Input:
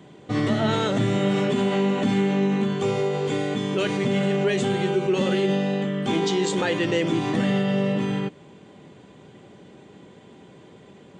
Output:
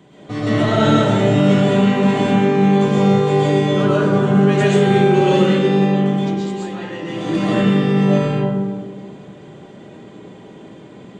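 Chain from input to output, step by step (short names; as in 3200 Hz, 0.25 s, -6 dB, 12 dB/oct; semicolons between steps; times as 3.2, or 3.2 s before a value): 3.71–4.41 resonant high shelf 1700 Hz -6 dB, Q 3; 5.79–7.36 dip -13.5 dB, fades 0.39 s; digital reverb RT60 1.6 s, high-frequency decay 0.3×, pre-delay 85 ms, DRR -8 dB; gain -1 dB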